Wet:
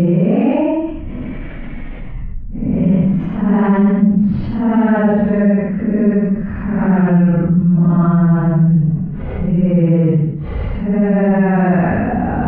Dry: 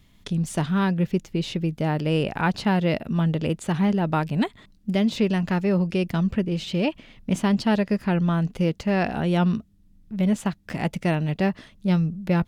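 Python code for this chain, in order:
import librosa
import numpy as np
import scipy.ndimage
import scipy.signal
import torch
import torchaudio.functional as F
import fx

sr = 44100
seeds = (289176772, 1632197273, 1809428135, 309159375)

y = scipy.signal.sosfilt(scipy.signal.butter(4, 1900.0, 'lowpass', fs=sr, output='sos'), x)
y = fx.low_shelf(y, sr, hz=220.0, db=11.0)
y = fx.paulstretch(y, sr, seeds[0], factor=5.2, window_s=0.1, from_s=6.76)
y = fx.rev_fdn(y, sr, rt60_s=0.8, lf_ratio=1.6, hf_ratio=0.4, size_ms=72.0, drr_db=19.0)
y = fx.env_flatten(y, sr, amount_pct=50)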